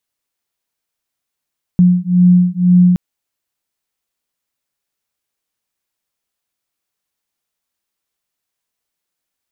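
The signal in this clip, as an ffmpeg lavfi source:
-f lavfi -i "aevalsrc='0.299*(sin(2*PI*178*t)+sin(2*PI*180*t))':d=1.17:s=44100"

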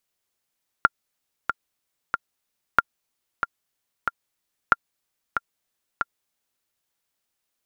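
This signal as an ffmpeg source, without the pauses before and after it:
-f lavfi -i "aevalsrc='pow(10,(-1.5-8*gte(mod(t,3*60/93),60/93))/20)*sin(2*PI*1390*mod(t,60/93))*exp(-6.91*mod(t,60/93)/0.03)':d=5.8:s=44100"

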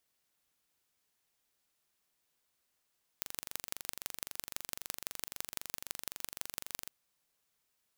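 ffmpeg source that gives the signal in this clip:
-f lavfi -i "aevalsrc='0.398*eq(mod(n,1853),0)*(0.5+0.5*eq(mod(n,7412),0))':d=3.66:s=44100"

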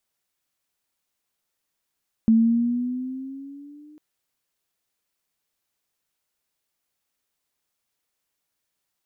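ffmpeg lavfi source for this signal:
-f lavfi -i "aevalsrc='pow(10,(-12-33.5*t/1.7)/20)*sin(2*PI*222*1.7/(5.5*log(2)/12)*(exp(5.5*log(2)/12*t/1.7)-1))':d=1.7:s=44100"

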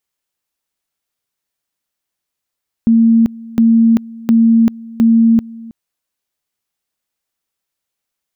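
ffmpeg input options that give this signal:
-f lavfi -i "aevalsrc='pow(10,(-6-22*gte(mod(t,0.71),0.39))/20)*sin(2*PI*228*t)':d=2.84:s=44100"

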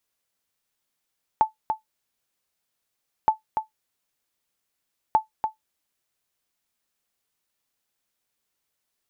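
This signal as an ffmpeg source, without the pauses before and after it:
-f lavfi -i "aevalsrc='0.355*(sin(2*PI*873*mod(t,1.87))*exp(-6.91*mod(t,1.87)/0.13)+0.473*sin(2*PI*873*max(mod(t,1.87)-0.29,0))*exp(-6.91*max(mod(t,1.87)-0.29,0)/0.13))':d=5.61:s=44100"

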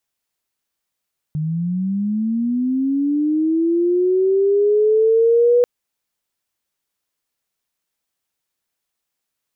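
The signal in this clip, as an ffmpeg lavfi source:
-f lavfi -i "aevalsrc='pow(10,(-19+9*t/4.29)/20)*sin(2*PI*(150*t+340*t*t/(2*4.29)))':d=4.29:s=44100"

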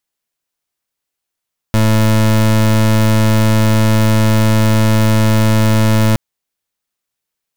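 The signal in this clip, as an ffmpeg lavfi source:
-f lavfi -i "aevalsrc='0.299*(2*lt(mod(109*t,1),0.28)-1)':d=4.42:s=44100"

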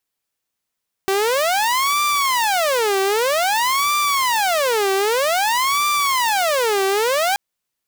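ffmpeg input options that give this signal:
-f lavfi -i "aevalsrc='0.211*(2*mod((783*t-397/(2*PI*0.52)*sin(2*PI*0.52*t)),1)-1)':d=6.28:s=44100"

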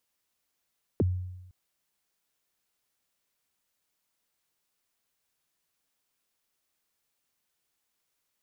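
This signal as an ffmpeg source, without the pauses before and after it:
-f lavfi -i "aevalsrc='0.106*pow(10,-3*t/0.99)*sin(2*PI*(510*0.027/log(91/510)*(exp(log(91/510)*min(t,0.027)/0.027)-1)+91*max(t-0.027,0)))':d=0.51:s=44100"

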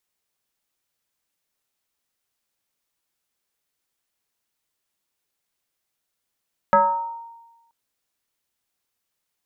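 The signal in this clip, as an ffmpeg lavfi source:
-f lavfi -i "aevalsrc='0.316*pow(10,-3*t/1.14)*sin(2*PI*926*t+1.4*pow(10,-3*t/0.95)*sin(2*PI*0.39*926*t))':d=0.98:s=44100"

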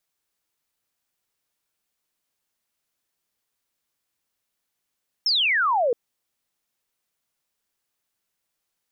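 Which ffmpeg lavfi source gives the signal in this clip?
-f lavfi -i "aevalsrc='0.126*clip(t/0.002,0,1)*clip((0.67-t)/0.002,0,1)*sin(2*PI*5500*0.67/log(450/5500)*(exp(log(450/5500)*t/0.67)-1))':d=0.67:s=44100"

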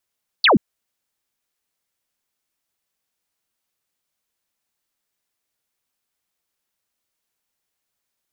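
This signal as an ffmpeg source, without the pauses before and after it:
-f lavfi -i "aevalsrc='0.316*clip(t/0.002,0,1)*clip((0.13-t)/0.002,0,1)*sin(2*PI*4800*0.13/log(160/4800)*(exp(log(160/4800)*t/0.13)-1))':d=0.13:s=44100"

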